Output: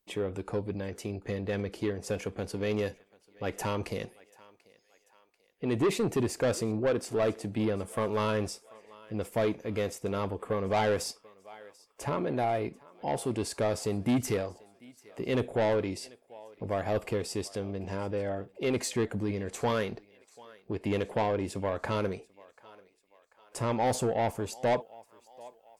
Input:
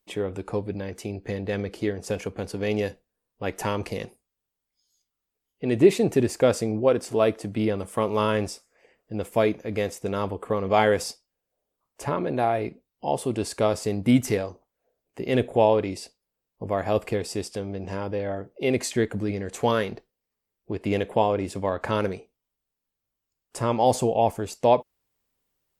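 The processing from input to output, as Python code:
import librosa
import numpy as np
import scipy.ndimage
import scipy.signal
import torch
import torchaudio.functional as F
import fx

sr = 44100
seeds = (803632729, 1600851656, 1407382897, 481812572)

p1 = np.clip(x, -10.0 ** (-16.5 / 20.0), 10.0 ** (-16.5 / 20.0))
p2 = x + (p1 * 10.0 ** (-9.0 / 20.0))
p3 = fx.echo_thinned(p2, sr, ms=739, feedback_pct=52, hz=520.0, wet_db=-23.0)
p4 = 10.0 ** (-16.0 / 20.0) * np.tanh(p3 / 10.0 ** (-16.0 / 20.0))
y = p4 * 10.0 ** (-5.5 / 20.0)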